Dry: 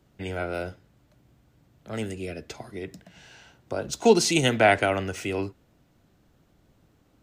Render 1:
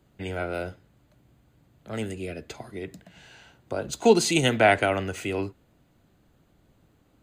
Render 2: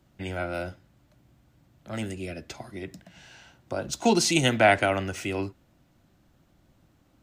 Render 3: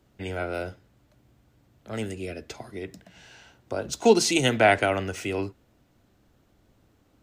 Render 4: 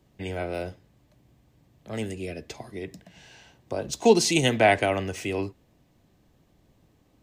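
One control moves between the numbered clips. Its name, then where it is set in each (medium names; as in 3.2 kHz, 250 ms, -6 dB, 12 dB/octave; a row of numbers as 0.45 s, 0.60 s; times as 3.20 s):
band-stop, frequency: 5.5 kHz, 440 Hz, 160 Hz, 1.4 kHz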